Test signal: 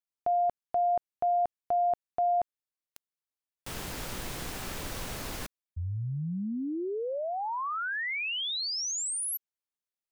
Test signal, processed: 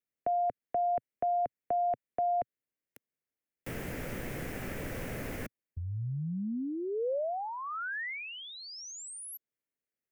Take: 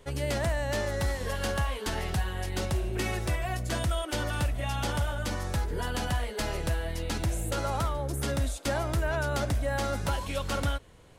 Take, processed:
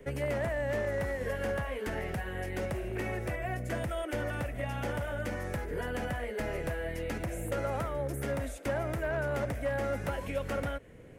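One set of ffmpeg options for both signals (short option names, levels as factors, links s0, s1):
-filter_complex "[0:a]equalizer=f=125:t=o:w=1:g=5,equalizer=f=250:t=o:w=1:g=8,equalizer=f=500:t=o:w=1:g=8,equalizer=f=1000:t=o:w=1:g=-8,equalizer=f=2000:t=o:w=1:g=9,equalizer=f=4000:t=o:w=1:g=-11,equalizer=f=8000:t=o:w=1:g=-4,asoftclip=type=hard:threshold=0.119,acrossover=split=170|540|1300[s0][s1][s2][s3];[s0]acompressor=threshold=0.0158:ratio=4[s4];[s1]acompressor=threshold=0.00708:ratio=4[s5];[s2]acompressor=threshold=0.0398:ratio=4[s6];[s3]acompressor=threshold=0.00794:ratio=4[s7];[s4][s5][s6][s7]amix=inputs=4:normalize=0,volume=0.841"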